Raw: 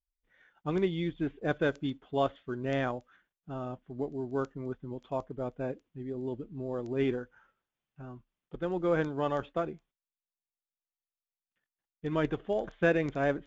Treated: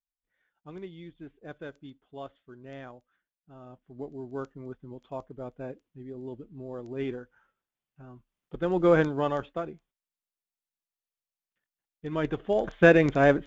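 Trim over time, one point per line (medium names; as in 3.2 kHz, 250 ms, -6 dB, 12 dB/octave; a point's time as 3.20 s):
3.50 s -12.5 dB
4.06 s -3.5 dB
8.06 s -3.5 dB
8.87 s +8 dB
9.61 s -1.5 dB
12.08 s -1.5 dB
12.79 s +8.5 dB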